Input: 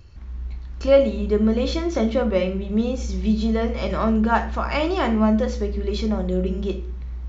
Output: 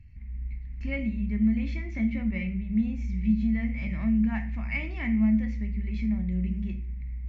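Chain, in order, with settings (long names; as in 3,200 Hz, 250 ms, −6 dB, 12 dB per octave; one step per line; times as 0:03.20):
drawn EQ curve 240 Hz 0 dB, 440 Hz −28 dB, 700 Hz −17 dB, 1,400 Hz −22 dB, 2,100 Hz +6 dB, 3,300 Hz −18 dB, 5,600 Hz −19 dB, 8,700 Hz −22 dB
level −3.5 dB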